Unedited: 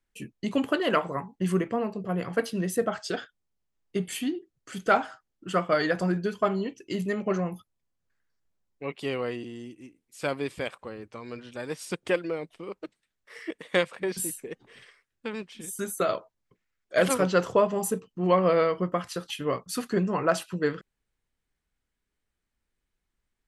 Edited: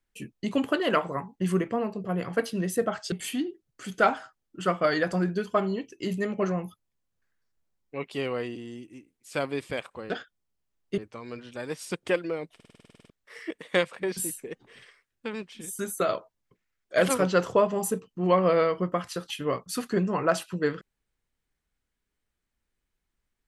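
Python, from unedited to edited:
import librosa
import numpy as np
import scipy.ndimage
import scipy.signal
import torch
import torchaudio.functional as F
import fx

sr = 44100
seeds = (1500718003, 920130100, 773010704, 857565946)

y = fx.edit(x, sr, fx.move(start_s=3.12, length_s=0.88, to_s=10.98),
    fx.stutter_over(start_s=12.55, slice_s=0.05, count=11), tone=tone)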